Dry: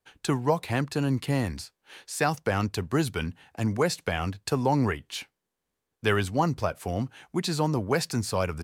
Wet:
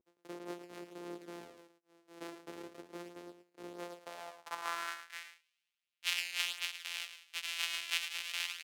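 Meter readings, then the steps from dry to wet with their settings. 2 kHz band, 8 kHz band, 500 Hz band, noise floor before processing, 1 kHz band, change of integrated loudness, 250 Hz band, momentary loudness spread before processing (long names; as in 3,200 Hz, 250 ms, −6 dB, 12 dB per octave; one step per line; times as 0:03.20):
−7.0 dB, −8.0 dB, −21.5 dB, −84 dBFS, −16.5 dB, −12.0 dB, −22.5 dB, 9 LU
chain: samples sorted by size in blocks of 256 samples
high-pass filter 54 Hz 24 dB per octave
first difference
reversed playback
upward compression, threshold −44 dBFS
reversed playback
pitch vibrato 0.36 Hz 28 cents
in parallel at −10 dB: wave folding −22 dBFS
on the sum: band-pass filter sweep 360 Hz → 2,700 Hz, 0:03.66–0:05.47
single-tap delay 109 ms −10 dB
level +10 dB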